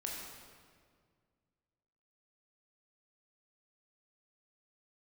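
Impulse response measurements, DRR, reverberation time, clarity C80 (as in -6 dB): -2.5 dB, 1.9 s, 2.0 dB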